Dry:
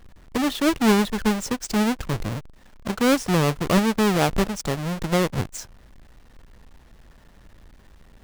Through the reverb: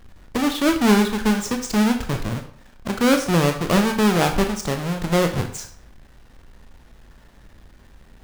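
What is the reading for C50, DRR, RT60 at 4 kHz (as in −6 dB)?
9.0 dB, 5.0 dB, 0.45 s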